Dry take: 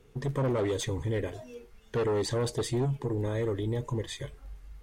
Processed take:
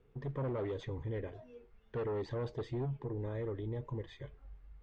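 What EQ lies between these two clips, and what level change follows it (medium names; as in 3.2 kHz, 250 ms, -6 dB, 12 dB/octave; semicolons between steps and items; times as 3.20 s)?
low-pass 2.7 kHz 6 dB/octave; distance through air 180 m; peaking EQ 260 Hz -2 dB; -7.5 dB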